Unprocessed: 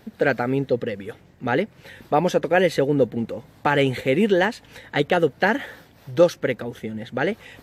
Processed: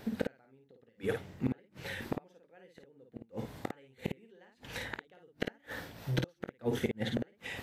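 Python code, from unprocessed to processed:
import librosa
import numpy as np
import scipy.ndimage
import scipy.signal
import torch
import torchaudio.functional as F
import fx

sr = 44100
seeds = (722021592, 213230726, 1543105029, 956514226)

y = fx.hum_notches(x, sr, base_hz=50, count=7)
y = fx.gate_flip(y, sr, shuts_db=-19.0, range_db=-42)
y = fx.room_early_taps(y, sr, ms=(22, 53), db=(-16.0, -4.5))
y = y * 10.0 ** (1.0 / 20.0)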